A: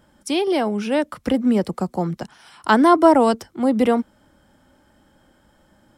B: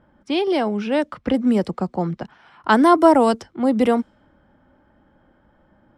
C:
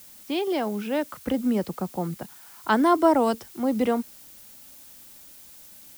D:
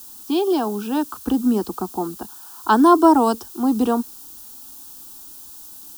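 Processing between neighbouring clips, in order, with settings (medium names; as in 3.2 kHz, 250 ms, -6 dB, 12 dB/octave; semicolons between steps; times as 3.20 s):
level-controlled noise filter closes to 1.8 kHz, open at -12 dBFS
added noise blue -42 dBFS; trim -6 dB
static phaser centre 560 Hz, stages 6; trim +8 dB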